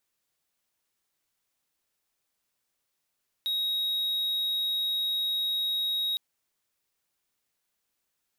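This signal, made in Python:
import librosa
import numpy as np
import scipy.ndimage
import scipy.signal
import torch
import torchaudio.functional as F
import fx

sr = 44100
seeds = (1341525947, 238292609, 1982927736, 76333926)

y = 10.0 ** (-24.0 / 20.0) * (1.0 - 4.0 * np.abs(np.mod(3790.0 * (np.arange(round(2.71 * sr)) / sr) + 0.25, 1.0) - 0.5))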